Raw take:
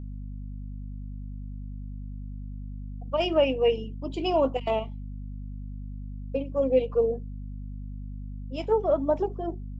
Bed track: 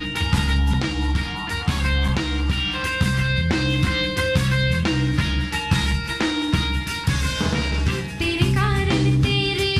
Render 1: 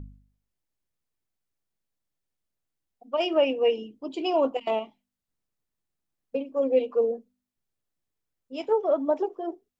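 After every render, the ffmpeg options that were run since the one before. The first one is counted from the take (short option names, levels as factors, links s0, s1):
-af "bandreject=f=50:t=h:w=4,bandreject=f=100:t=h:w=4,bandreject=f=150:t=h:w=4,bandreject=f=200:t=h:w=4,bandreject=f=250:t=h:w=4"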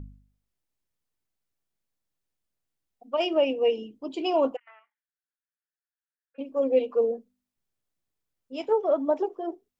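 -filter_complex "[0:a]asettb=1/sr,asplit=3[s0][s1][s2];[s0]atrim=end=3.294[s3];[s1]atrim=start=3.29:end=3.83,asetpts=PTS-STARTPTS,afade=t=in:d=0.004:c=qsin,afade=t=out:st=0.536:d=0.004:c=qsin,equalizer=f=1500:w=1.1:g=-6[s4];[s2]atrim=start=3.826[s5];[s3][s4]acrossfade=d=0.004:c1=hsin:c2=qsin[s6];[s6][s5]acrossfade=d=0.004:c1=qsin:c2=hsin,asplit=3[s7][s8][s9];[s7]afade=t=out:st=4.55:d=0.02[s10];[s8]asuperpass=centerf=1600:order=4:qfactor=3.6,afade=t=in:st=4.55:d=0.02,afade=t=out:st=6.38:d=0.02[s11];[s9]afade=t=in:st=6.38:d=0.02[s12];[s10][s11][s12]amix=inputs=3:normalize=0"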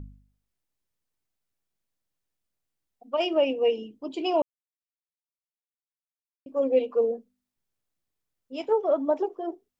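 -filter_complex "[0:a]asplit=3[s0][s1][s2];[s0]atrim=end=4.42,asetpts=PTS-STARTPTS,afade=t=out:st=4.416:d=0.004:c=hsin[s3];[s1]atrim=start=4.42:end=6.46,asetpts=PTS-STARTPTS,volume=0[s4];[s2]atrim=start=6.46,asetpts=PTS-STARTPTS,afade=t=in:d=0.004:c=hsin[s5];[s3][s4][s5]concat=n=3:v=0:a=1"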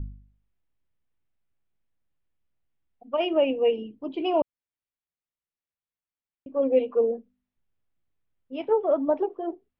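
-af "lowpass=f=3200:w=0.5412,lowpass=f=3200:w=1.3066,lowshelf=f=160:g=9"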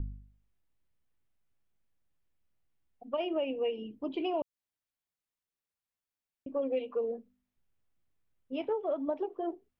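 -filter_complex "[0:a]acrossover=split=960|2700[s0][s1][s2];[s0]acompressor=threshold=0.0251:ratio=4[s3];[s1]acompressor=threshold=0.00398:ratio=4[s4];[s2]acompressor=threshold=0.00355:ratio=4[s5];[s3][s4][s5]amix=inputs=3:normalize=0"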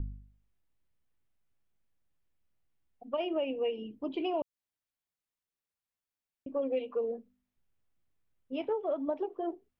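-af anull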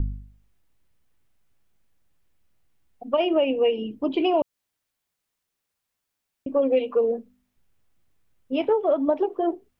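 -af "volume=3.55"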